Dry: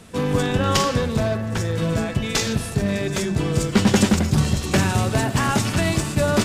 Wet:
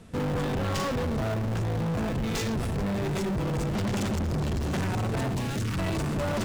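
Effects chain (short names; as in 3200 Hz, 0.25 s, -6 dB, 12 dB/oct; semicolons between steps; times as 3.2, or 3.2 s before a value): in parallel at -5.5 dB: Schmitt trigger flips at -30 dBFS; on the sum: tilt -1.5 dB/oct; soft clip -19 dBFS, distortion -8 dB; 5.34–5.77 bell 1700 Hz -> 540 Hz -13 dB 0.93 oct; gain -7 dB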